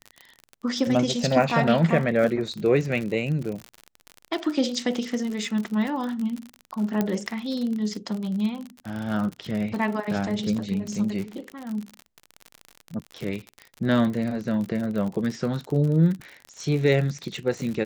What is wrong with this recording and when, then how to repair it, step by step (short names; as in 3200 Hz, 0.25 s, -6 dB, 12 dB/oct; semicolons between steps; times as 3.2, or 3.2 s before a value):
crackle 48/s -29 dBFS
7.01 pop -11 dBFS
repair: de-click